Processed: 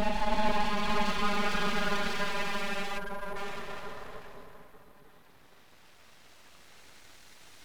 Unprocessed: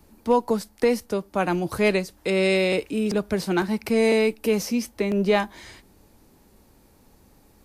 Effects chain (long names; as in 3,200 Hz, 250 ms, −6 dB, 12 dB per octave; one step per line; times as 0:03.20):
extreme stretch with random phases 25×, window 0.10 s, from 0:05.29
time-frequency box erased 0:02.98–0:03.36, 880–10,000 Hz
full-wave rectification
level −8 dB